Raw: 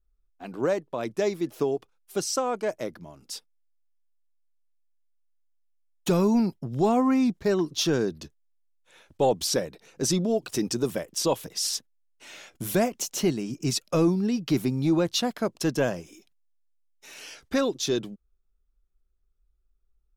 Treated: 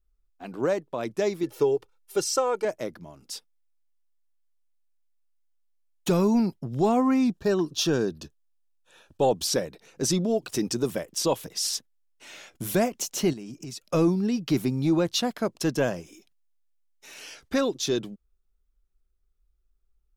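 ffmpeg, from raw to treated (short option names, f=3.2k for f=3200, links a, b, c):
-filter_complex "[0:a]asettb=1/sr,asplit=3[a][b][c];[a]atrim=end=1.434[d];[b]atrim=start=1.43:end=2.65,asetpts=PTS-STARTPTS,afade=t=in:d=0.004:c=qsin,afade=t=out:st=1.216:d=0.004:c=qsin,aecho=1:1:2.2:0.65,atrim=end_sample=53802[e];[c]atrim=start=2.646[f];[d][e]acrossfade=d=0.004:c1=hsin:c2=qsin[g];[g][f]acrossfade=d=0.004:c1=qsin:c2=hsin,asettb=1/sr,asplit=3[h][i][j];[h]atrim=end=7.354[k];[i]atrim=start=7.35:end=9.46,asetpts=PTS-STARTPTS,afade=t=in:d=0.004:c=qsin,afade=t=out:st=2.106:d=0.004:c=qsin,asuperstop=centerf=2100:order=8:qfactor=5.7[l];[j]atrim=start=9.456[m];[k][l]acrossfade=d=0.004:c1=hsin:c2=qsin[n];[n][m]acrossfade=d=0.004:c1=qsin:c2=hsin,asettb=1/sr,asplit=3[o][p][q];[o]atrim=end=13.334[r];[p]atrim=start=13.33:end=13.91,asetpts=PTS-STARTPTS,afade=t=in:d=0.004:c=qsin,afade=t=out:st=0.576:d=0.004:c=qsin,acompressor=threshold=-36dB:ratio=5:attack=3.2:release=140:knee=1:detection=peak[s];[q]atrim=start=13.906[t];[r][s]acrossfade=d=0.004:c1=hsin:c2=qsin[u];[u][t]acrossfade=d=0.004:c1=qsin:c2=hsin"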